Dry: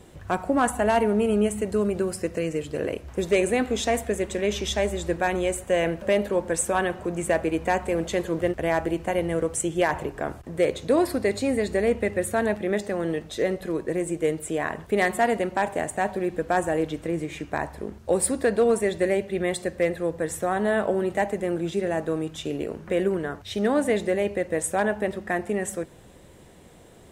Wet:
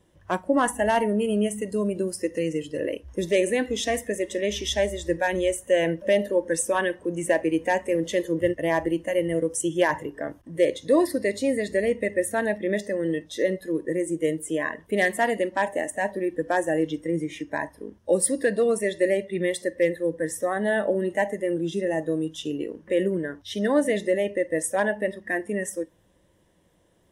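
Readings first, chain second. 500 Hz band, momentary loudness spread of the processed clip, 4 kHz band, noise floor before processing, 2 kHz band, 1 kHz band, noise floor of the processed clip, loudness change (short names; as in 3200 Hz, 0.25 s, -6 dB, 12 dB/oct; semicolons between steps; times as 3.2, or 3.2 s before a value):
0.0 dB, 7 LU, +1.0 dB, -49 dBFS, +1.0 dB, -2.0 dB, -62 dBFS, 0.0 dB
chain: spectral noise reduction 14 dB; ripple EQ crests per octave 1.2, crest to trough 6 dB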